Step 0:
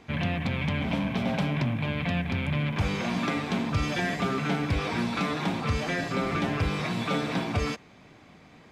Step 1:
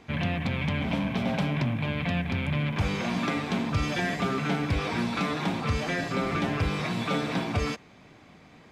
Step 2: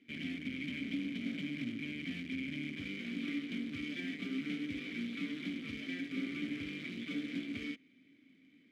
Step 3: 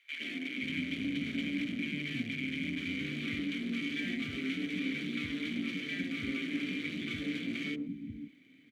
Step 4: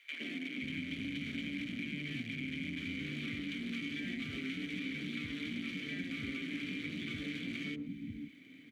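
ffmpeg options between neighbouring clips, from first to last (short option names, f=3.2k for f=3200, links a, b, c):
-af anull
-filter_complex "[0:a]acrusher=bits=2:mode=log:mix=0:aa=0.000001,aeval=exprs='0.133*(cos(1*acos(clip(val(0)/0.133,-1,1)))-cos(1*PI/2))+0.0266*(cos(6*acos(clip(val(0)/0.133,-1,1)))-cos(6*PI/2))':c=same,asplit=3[a][b][c];[a]bandpass=f=270:t=q:w=8,volume=0dB[d];[b]bandpass=f=2.29k:t=q:w=8,volume=-6dB[e];[c]bandpass=f=3.01k:t=q:w=8,volume=-9dB[f];[d][e][f]amix=inputs=3:normalize=0,volume=-2dB"
-filter_complex "[0:a]bandreject=f=5.1k:w=11,acrossover=split=250|830[a][b][c];[b]adelay=110[d];[a]adelay=530[e];[e][d][c]amix=inputs=3:normalize=0,volume=6dB"
-filter_complex "[0:a]acrossover=split=160|1100[a][b][c];[a]acompressor=threshold=-52dB:ratio=4[d];[b]acompressor=threshold=-49dB:ratio=4[e];[c]acompressor=threshold=-48dB:ratio=4[f];[d][e][f]amix=inputs=3:normalize=0,volume=5dB"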